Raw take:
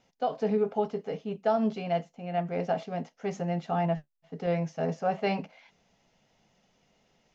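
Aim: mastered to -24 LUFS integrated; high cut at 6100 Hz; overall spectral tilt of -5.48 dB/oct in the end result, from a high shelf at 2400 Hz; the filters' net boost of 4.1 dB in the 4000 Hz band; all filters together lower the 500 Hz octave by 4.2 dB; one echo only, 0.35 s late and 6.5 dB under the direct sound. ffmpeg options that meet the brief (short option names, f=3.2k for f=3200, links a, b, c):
-af "lowpass=6.1k,equalizer=f=500:t=o:g=-6,highshelf=f=2.4k:g=3.5,equalizer=f=4k:t=o:g=3.5,aecho=1:1:350:0.473,volume=8.5dB"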